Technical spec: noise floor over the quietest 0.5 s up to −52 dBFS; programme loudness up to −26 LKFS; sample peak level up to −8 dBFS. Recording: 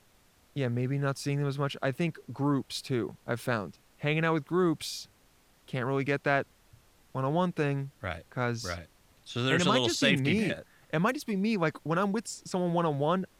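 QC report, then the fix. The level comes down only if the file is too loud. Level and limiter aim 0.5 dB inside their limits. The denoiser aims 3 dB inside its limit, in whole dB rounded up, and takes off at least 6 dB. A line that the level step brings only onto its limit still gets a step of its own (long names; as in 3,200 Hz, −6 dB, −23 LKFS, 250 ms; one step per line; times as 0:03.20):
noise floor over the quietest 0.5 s −63 dBFS: in spec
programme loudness −30.0 LKFS: in spec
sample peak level −10.5 dBFS: in spec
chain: no processing needed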